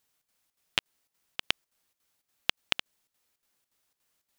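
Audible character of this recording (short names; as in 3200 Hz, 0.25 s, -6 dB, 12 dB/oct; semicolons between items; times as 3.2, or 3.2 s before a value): chopped level 3.5 Hz, depth 65%, duty 75%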